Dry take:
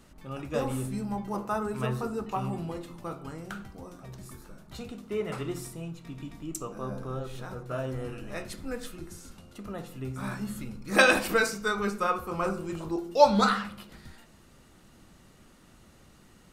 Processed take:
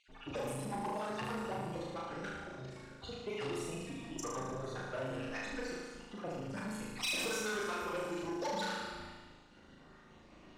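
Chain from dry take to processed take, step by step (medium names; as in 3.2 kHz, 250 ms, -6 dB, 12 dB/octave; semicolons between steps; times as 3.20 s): random holes in the spectrogram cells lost 51%; level-controlled noise filter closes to 2.7 kHz, open at -29 dBFS; compression 5:1, threshold -34 dBFS, peak gain reduction 15 dB; time stretch by phase-locked vocoder 0.64×; treble shelf 7.2 kHz -8.5 dB; flutter echo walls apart 6.4 m, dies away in 1.2 s; saturation -34 dBFS, distortion -12 dB; tone controls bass -7 dB, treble +7 dB; band-stop 1.3 kHz, Q 11; reverberation RT60 0.30 s, pre-delay 112 ms, DRR 14.5 dB; trim +2 dB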